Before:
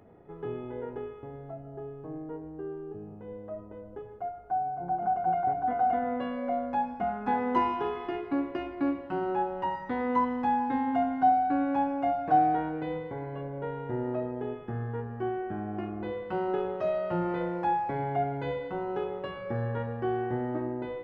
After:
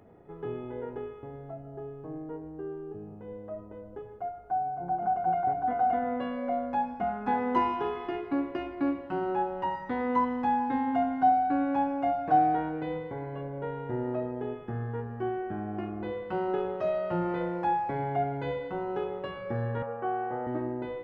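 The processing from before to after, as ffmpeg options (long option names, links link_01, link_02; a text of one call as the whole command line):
ffmpeg -i in.wav -filter_complex "[0:a]asettb=1/sr,asplit=3[link_01][link_02][link_03];[link_01]atrim=end=19.824[link_04];[link_02]atrim=start=19.82:end=20.47,asetpts=PTS-STARTPTS,afade=type=in:duration=0.004:curve=qsin,afade=type=out:start_time=0.646:duration=0.004:curve=qsin,highpass=230,equalizer=frequency=240:width_type=q:width=4:gain=-6,equalizer=frequency=350:width_type=q:width=4:gain=-7,equalizer=frequency=510:width_type=q:width=4:gain=5,equalizer=frequency=780:width_type=q:width=4:gain=4,equalizer=frequency=1300:width_type=q:width=4:gain=7,equalizer=frequency=1800:width_type=q:width=4:gain=-6,lowpass=frequency=2600:width=0.5412,lowpass=frequency=2600:width=1.3066[link_05];[link_03]atrim=start=20.466[link_06];[link_04][link_05]acrossfade=duration=0.004:curve1=hsin:curve2=qsin[link_07];[link_07][link_06]acrossfade=duration=0.004:curve1=qsin:curve2=hsin" out.wav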